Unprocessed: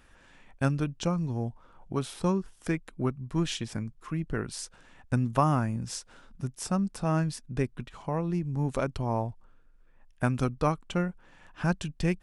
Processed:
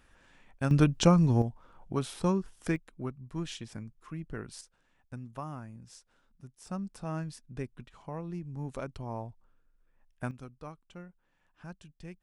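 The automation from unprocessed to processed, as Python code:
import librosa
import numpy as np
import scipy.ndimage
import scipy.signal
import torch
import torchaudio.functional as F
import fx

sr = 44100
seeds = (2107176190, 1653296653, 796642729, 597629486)

y = fx.gain(x, sr, db=fx.steps((0.0, -4.0), (0.71, 7.0), (1.42, -1.0), (2.76, -8.0), (4.61, -16.0), (6.67, -9.0), (10.31, -18.5)))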